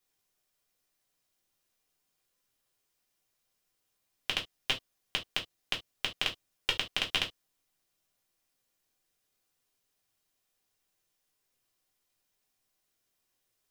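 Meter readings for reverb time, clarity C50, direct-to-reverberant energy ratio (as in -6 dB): no single decay rate, 17.0 dB, -1.5 dB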